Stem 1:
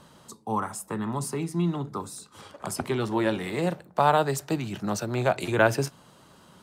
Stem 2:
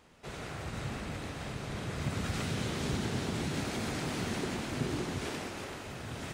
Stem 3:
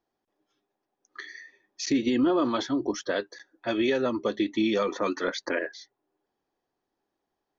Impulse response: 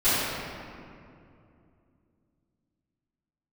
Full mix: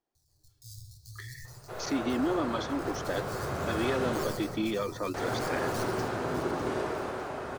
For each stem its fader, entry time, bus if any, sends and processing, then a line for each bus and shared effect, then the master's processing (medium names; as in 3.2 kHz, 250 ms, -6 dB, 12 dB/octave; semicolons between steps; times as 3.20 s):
-8.5 dB, 0.15 s, send -19.5 dB, echo send -9 dB, decimation with a swept rate 17×, swing 160% 0.46 Hz; saturation -20 dBFS, distortion -10 dB; Chebyshev band-stop 120–4300 Hz, order 5
-8.0 dB, 1.45 s, muted 4.24–5.14 s, send -15 dB, no echo send, high-order bell 760 Hz +11.5 dB 2.4 oct
-6.0 dB, 0.00 s, no send, no echo send, none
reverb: on, RT60 2.6 s, pre-delay 3 ms
echo: feedback delay 603 ms, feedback 51%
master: none